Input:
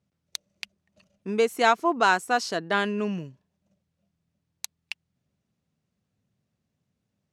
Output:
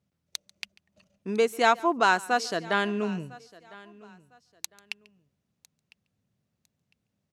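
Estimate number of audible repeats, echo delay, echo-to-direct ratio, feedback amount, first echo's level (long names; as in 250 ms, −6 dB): 3, 142 ms, −19.5 dB, repeats not evenly spaced, −23.0 dB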